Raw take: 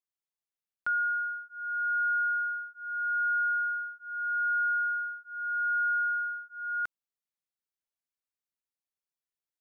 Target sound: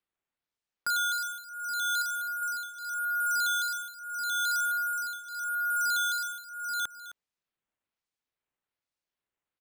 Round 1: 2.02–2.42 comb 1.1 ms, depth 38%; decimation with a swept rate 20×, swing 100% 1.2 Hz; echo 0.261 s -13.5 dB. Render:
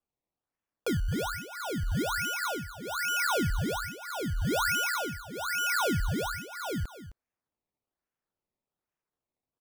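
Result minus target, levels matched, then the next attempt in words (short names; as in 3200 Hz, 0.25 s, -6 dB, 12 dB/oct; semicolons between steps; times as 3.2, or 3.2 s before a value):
decimation with a swept rate: distortion +34 dB
2.02–2.42 comb 1.1 ms, depth 38%; decimation with a swept rate 6×, swing 100% 1.2 Hz; echo 0.261 s -13.5 dB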